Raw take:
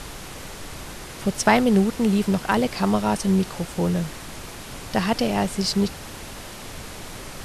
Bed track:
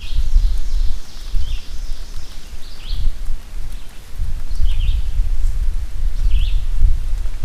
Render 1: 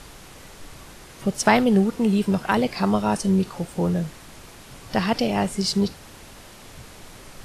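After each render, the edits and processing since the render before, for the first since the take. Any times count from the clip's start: noise print and reduce 7 dB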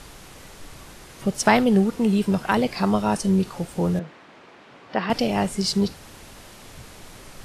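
3.99–5.10 s: band-pass 260–2600 Hz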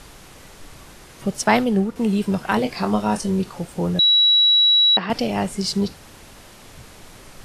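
1.44–1.96 s: three bands expanded up and down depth 70%; 2.47–3.40 s: doubling 23 ms -8 dB; 3.99–4.97 s: bleep 3.9 kHz -11.5 dBFS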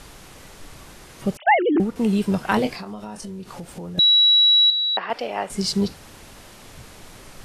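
1.37–1.80 s: formants replaced by sine waves; 2.75–3.98 s: compression 8:1, threshold -31 dBFS; 4.70–5.50 s: three-band isolator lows -21 dB, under 410 Hz, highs -12 dB, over 2.9 kHz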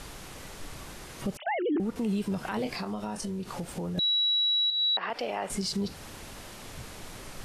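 compression 10:1, threshold -23 dBFS, peak gain reduction 12 dB; peak limiter -22.5 dBFS, peak gain reduction 11 dB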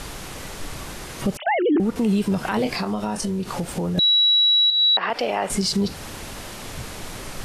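trim +9 dB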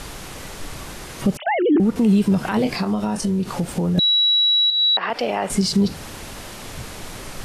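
dynamic bell 180 Hz, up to +5 dB, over -32 dBFS, Q 0.76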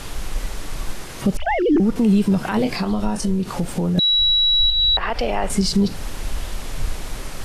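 add bed track -12 dB

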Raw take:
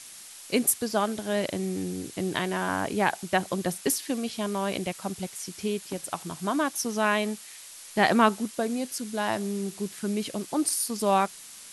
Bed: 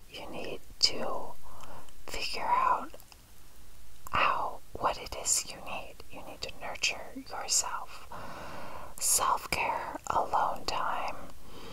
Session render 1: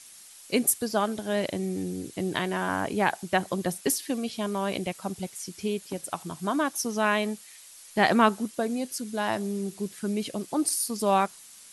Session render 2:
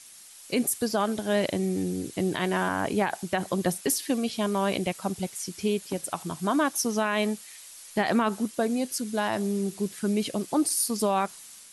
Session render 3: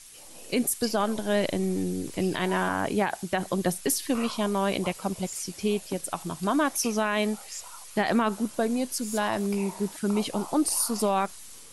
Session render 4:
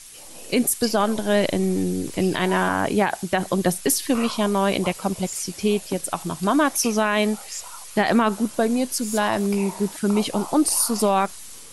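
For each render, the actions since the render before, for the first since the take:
noise reduction 6 dB, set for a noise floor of -46 dBFS
level rider gain up to 3 dB; peak limiter -15.5 dBFS, peak gain reduction 11 dB
add bed -12 dB
trim +5.5 dB

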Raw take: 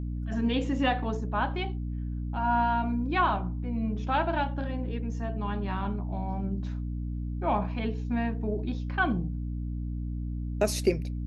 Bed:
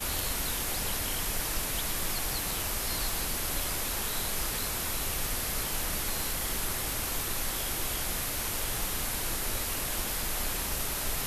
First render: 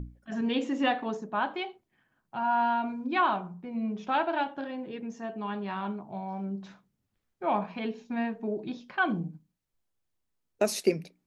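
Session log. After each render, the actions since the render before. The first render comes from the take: hum notches 60/120/180/240/300 Hz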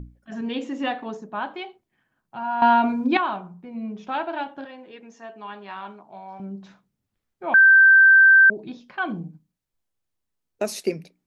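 2.62–3.17 s: gain +11 dB; 4.65–6.40 s: frequency weighting A; 7.54–8.50 s: bleep 1.56 kHz -9 dBFS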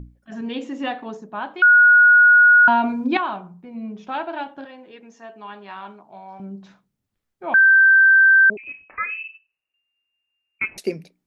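1.62–2.68 s: bleep 1.45 kHz -8 dBFS; 8.57–10.78 s: frequency inversion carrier 2.8 kHz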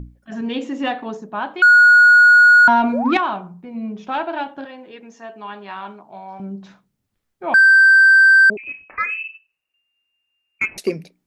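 2.93–3.14 s: painted sound rise 460–1500 Hz -27 dBFS; in parallel at -4 dB: saturation -17 dBFS, distortion -10 dB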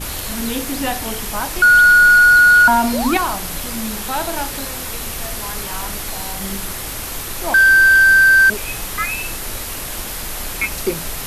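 add bed +5.5 dB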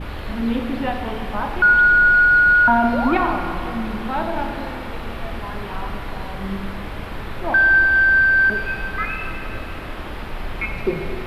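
distance through air 460 m; Schroeder reverb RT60 3 s, combs from 27 ms, DRR 3.5 dB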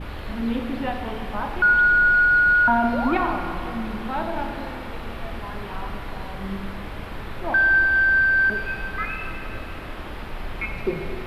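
trim -3.5 dB

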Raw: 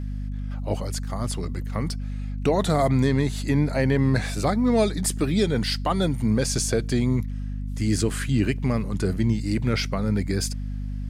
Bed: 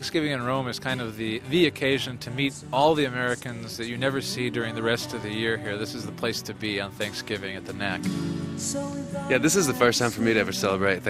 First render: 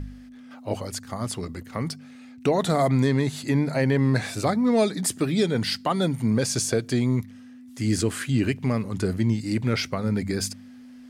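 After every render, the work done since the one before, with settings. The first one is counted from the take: de-hum 50 Hz, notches 4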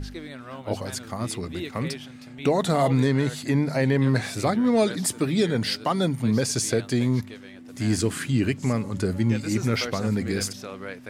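add bed -13.5 dB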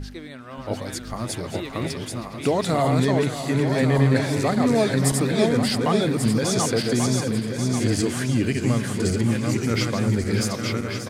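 backward echo that repeats 569 ms, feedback 58%, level -3 dB; on a send: delay 581 ms -11.5 dB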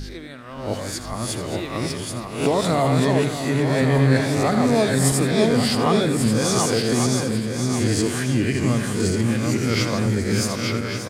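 reverse spectral sustain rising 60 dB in 0.49 s; delay 82 ms -12.5 dB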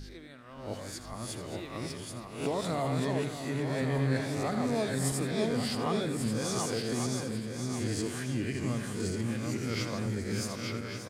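trim -12 dB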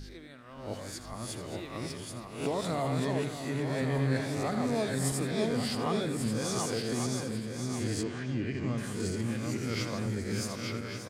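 8.03–8.78 s: distance through air 150 m

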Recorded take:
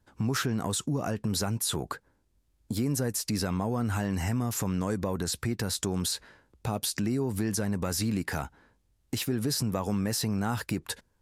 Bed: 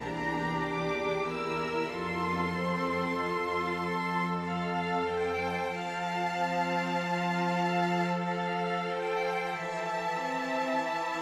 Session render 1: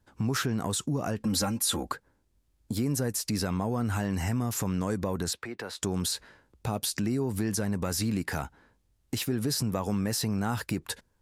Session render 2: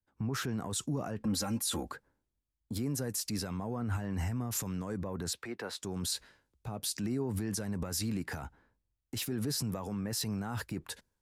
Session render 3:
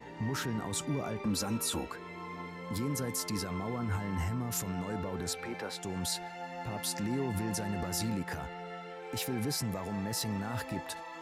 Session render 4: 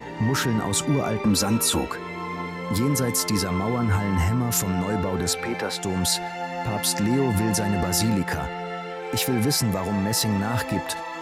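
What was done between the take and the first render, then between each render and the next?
1.20–1.92 s: comb 3.7 ms, depth 86%; 5.33–5.82 s: three-band isolator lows -19 dB, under 330 Hz, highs -15 dB, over 3.7 kHz
peak limiter -26.5 dBFS, peak gain reduction 11 dB; three bands expanded up and down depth 70%
add bed -12 dB
trim +11.5 dB

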